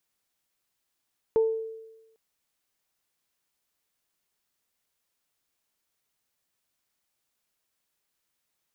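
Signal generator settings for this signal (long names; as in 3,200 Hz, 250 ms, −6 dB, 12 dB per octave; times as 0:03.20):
harmonic partials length 0.80 s, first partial 446 Hz, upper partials −17 dB, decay 1.06 s, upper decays 0.38 s, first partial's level −17 dB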